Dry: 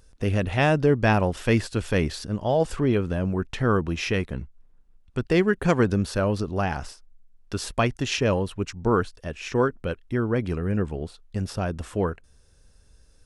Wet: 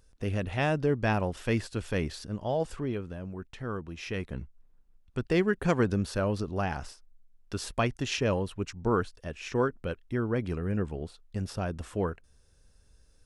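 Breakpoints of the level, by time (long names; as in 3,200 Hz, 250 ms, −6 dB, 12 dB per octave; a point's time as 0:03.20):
0:02.54 −7 dB
0:03.19 −13.5 dB
0:03.93 −13.5 dB
0:04.37 −5 dB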